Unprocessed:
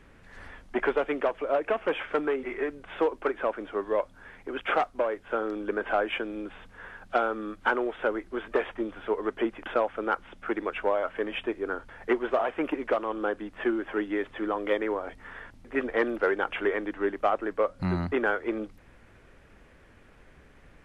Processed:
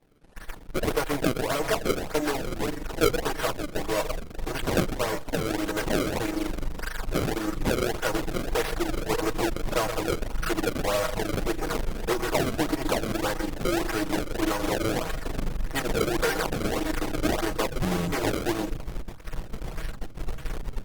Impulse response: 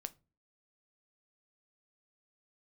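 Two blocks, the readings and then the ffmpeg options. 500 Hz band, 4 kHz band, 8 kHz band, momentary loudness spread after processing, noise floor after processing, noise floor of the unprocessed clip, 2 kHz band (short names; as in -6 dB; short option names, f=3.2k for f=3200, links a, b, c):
-0.5 dB, +10.0 dB, n/a, 10 LU, -39 dBFS, -55 dBFS, 0.0 dB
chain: -filter_complex "[0:a]aeval=exprs='val(0)+0.5*0.0106*sgn(val(0))':c=same,asubboost=boost=4:cutoff=91,asplit=2[a][b];[b]adelay=124,lowpass=f=3.7k:p=1,volume=-13dB,asplit=2[c][d];[d]adelay=124,lowpass=f=3.7k:p=1,volume=0.19[e];[a][c][e]amix=inputs=3:normalize=0,asplit=2[f][g];[g]alimiter=limit=-22dB:level=0:latency=1:release=87,volume=0dB[h];[f][h]amix=inputs=2:normalize=0,aeval=exprs='0.316*(cos(1*acos(clip(val(0)/0.316,-1,1)))-cos(1*PI/2))+0.0398*(cos(6*acos(clip(val(0)/0.316,-1,1)))-cos(6*PI/2))+0.1*(cos(8*acos(clip(val(0)/0.316,-1,1)))-cos(8*PI/2))':c=same,acompressor=mode=upward:threshold=-32dB:ratio=2.5,aecho=1:1:6.3:0.85,agate=range=-33dB:threshold=-18dB:ratio=3:detection=peak,acrusher=samples=28:mix=1:aa=0.000001:lfo=1:lforange=44.8:lforate=1.7,volume=-7dB" -ar 48000 -c:a libopus -b:a 24k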